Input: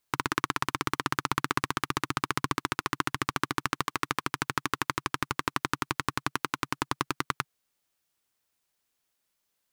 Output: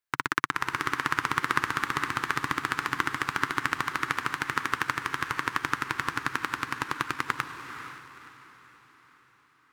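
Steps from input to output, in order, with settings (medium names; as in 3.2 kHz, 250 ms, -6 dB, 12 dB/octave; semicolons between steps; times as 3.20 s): peaking EQ 1.7 kHz +9 dB 1.1 oct; echo that smears into a reverb 502 ms, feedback 53%, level -5 dB; upward expansion 1.5:1, over -40 dBFS; trim -2.5 dB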